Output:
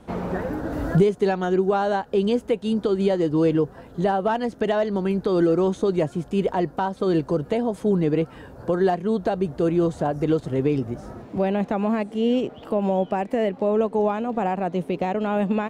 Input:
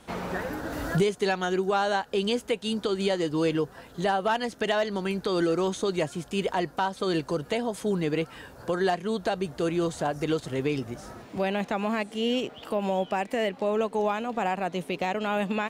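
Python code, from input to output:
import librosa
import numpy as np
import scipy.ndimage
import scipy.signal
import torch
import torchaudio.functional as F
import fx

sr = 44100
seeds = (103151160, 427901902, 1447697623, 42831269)

y = fx.tilt_shelf(x, sr, db=7.5, hz=1200.0)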